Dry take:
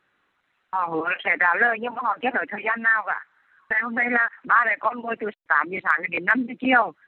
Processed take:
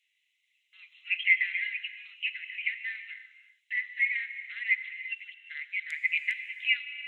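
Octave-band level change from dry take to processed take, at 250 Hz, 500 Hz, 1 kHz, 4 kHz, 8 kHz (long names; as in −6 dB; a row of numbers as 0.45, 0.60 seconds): below −40 dB, below −40 dB, below −40 dB, +3.5 dB, can't be measured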